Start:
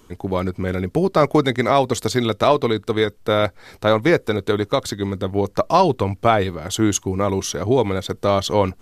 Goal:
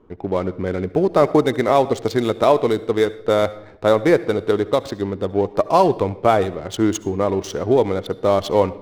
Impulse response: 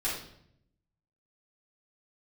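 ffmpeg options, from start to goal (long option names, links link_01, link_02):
-filter_complex "[0:a]equalizer=frequency=490:width=0.64:gain=7,adynamicsmooth=sensitivity=4:basefreq=1300,asplit=2[link_01][link_02];[1:a]atrim=start_sample=2205,adelay=62[link_03];[link_02][link_03]afir=irnorm=-1:irlink=0,volume=-23.5dB[link_04];[link_01][link_04]amix=inputs=2:normalize=0,volume=-4.5dB"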